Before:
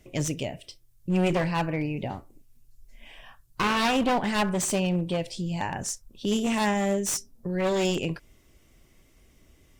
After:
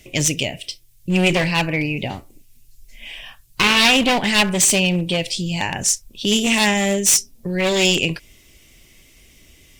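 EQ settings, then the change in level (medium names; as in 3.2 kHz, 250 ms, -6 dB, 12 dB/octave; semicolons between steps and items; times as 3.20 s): resonant high shelf 1.8 kHz +8 dB, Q 1.5; +6.0 dB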